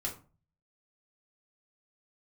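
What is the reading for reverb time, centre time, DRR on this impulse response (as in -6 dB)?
0.35 s, 18 ms, -3.0 dB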